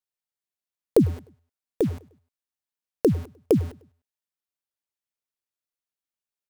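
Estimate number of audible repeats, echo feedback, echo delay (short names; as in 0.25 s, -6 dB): 2, 41%, 0.101 s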